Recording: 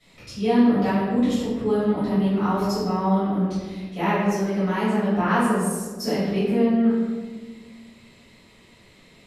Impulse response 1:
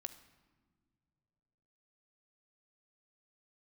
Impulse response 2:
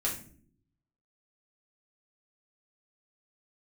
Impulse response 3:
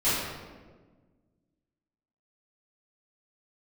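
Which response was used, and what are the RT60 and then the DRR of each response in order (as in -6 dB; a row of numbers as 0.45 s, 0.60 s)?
3; no single decay rate, no single decay rate, 1.4 s; 10.0 dB, -5.5 dB, -14.5 dB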